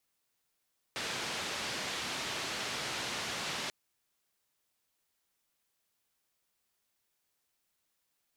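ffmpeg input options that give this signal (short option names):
-f lavfi -i "anoisesrc=c=white:d=2.74:r=44100:seed=1,highpass=f=94,lowpass=f=4500,volume=-26dB"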